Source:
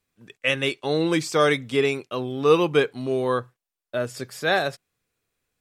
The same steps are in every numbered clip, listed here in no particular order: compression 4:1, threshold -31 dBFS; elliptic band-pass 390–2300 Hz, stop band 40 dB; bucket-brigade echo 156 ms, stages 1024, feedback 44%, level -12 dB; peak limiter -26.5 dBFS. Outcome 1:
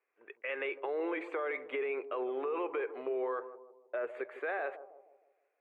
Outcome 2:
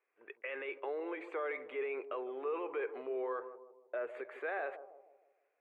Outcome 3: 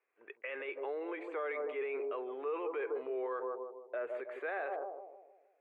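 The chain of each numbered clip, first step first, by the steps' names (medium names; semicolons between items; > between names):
elliptic band-pass > peak limiter > compression > bucket-brigade echo; peak limiter > bucket-brigade echo > compression > elliptic band-pass; bucket-brigade echo > peak limiter > compression > elliptic band-pass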